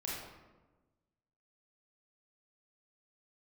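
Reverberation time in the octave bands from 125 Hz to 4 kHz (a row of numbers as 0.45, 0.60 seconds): 1.6, 1.5, 1.3, 1.1, 0.90, 0.65 seconds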